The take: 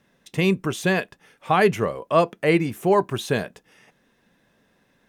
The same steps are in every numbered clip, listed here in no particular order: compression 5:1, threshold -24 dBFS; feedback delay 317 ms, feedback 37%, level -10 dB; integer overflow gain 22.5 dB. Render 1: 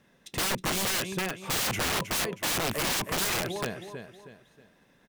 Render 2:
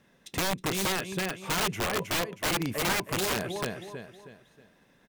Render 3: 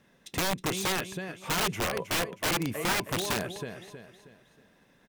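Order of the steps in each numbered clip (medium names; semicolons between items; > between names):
feedback delay > integer overflow > compression; feedback delay > compression > integer overflow; compression > feedback delay > integer overflow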